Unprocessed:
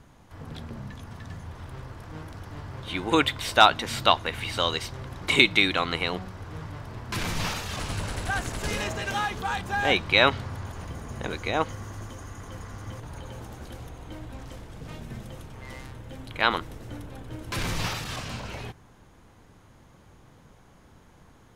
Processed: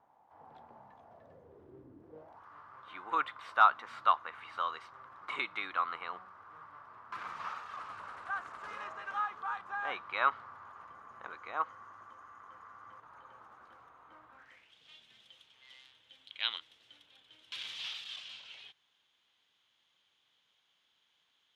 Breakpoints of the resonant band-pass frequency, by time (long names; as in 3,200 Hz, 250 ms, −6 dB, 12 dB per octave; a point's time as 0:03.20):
resonant band-pass, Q 4.9
0:00.93 820 Hz
0:01.97 280 Hz
0:02.46 1,200 Hz
0:14.32 1,200 Hz
0:14.75 3,300 Hz